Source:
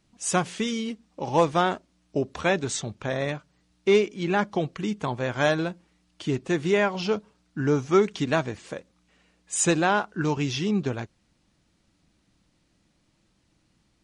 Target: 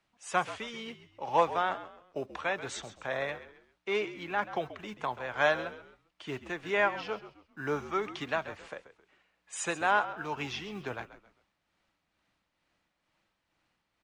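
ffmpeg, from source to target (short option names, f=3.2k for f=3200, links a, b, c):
-filter_complex "[0:a]acrossover=split=570 3200:gain=0.178 1 0.224[a][b][c];[a][b][c]amix=inputs=3:normalize=0,acrossover=split=160[d][e];[d]acrusher=samples=35:mix=1:aa=0.000001[f];[f][e]amix=inputs=2:normalize=0,tremolo=f=2.2:d=0.46,asplit=4[g][h][i][j];[h]adelay=133,afreqshift=-65,volume=-14dB[k];[i]adelay=266,afreqshift=-130,volume=-23.4dB[l];[j]adelay=399,afreqshift=-195,volume=-32.7dB[m];[g][k][l][m]amix=inputs=4:normalize=0"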